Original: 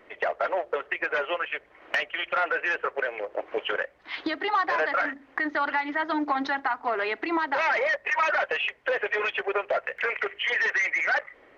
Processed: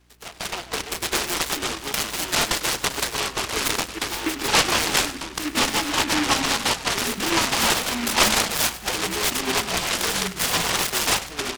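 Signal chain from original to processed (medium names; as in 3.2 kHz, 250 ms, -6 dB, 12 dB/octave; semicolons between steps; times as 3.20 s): hum 60 Hz, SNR 27 dB; level rider gain up to 15 dB; ever faster or slower copies 205 ms, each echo -4 st, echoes 2, each echo -6 dB; static phaser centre 2.8 kHz, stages 8; de-hum 134.1 Hz, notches 6; on a send: frequency-shifting echo 99 ms, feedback 41%, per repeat -37 Hz, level -15 dB; on the sum: delay time shaken by noise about 1.8 kHz, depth 0.24 ms; trim -5.5 dB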